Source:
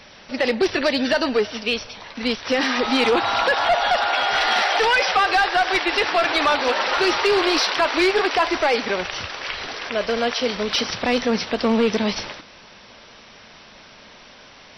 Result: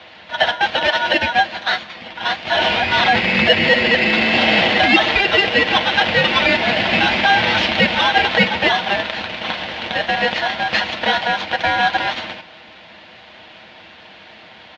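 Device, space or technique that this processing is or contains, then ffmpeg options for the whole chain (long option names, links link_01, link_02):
ring modulator pedal into a guitar cabinet: -af "equalizer=frequency=2200:width_type=o:width=2.2:gain=6.5,aecho=1:1:7.1:0.47,aeval=exprs='val(0)*sgn(sin(2*PI*1200*n/s))':channel_layout=same,highpass=110,equalizer=frequency=400:width_type=q:width=4:gain=-9,equalizer=frequency=700:width_type=q:width=4:gain=4,equalizer=frequency=1200:width_type=q:width=4:gain=-7,lowpass=frequency=3500:width=0.5412,lowpass=frequency=3500:width=1.3066,volume=1.5dB"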